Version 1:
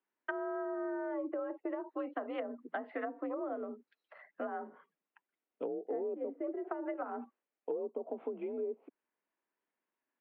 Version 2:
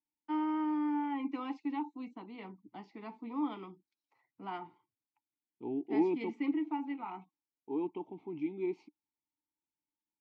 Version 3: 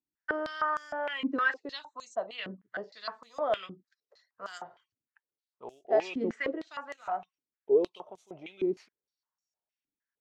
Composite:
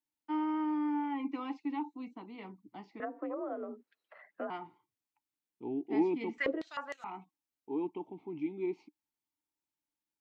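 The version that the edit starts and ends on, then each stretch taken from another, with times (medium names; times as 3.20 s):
2
3.00–4.50 s: from 1
6.38–7.04 s: from 3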